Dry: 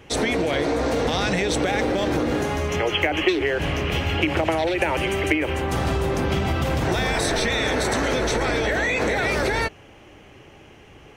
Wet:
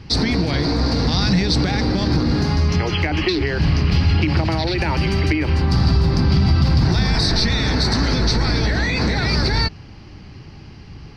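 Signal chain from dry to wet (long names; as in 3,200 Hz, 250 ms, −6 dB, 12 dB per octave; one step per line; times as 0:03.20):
drawn EQ curve 180 Hz 0 dB, 550 Hz −19 dB, 930 Hz −11 dB, 3,300 Hz −14 dB, 4,700 Hz +7 dB, 6,700 Hz −19 dB, 11,000 Hz −24 dB
in parallel at +2.5 dB: brickwall limiter −25 dBFS, peak gain reduction 10 dB
on the sum: level +6 dB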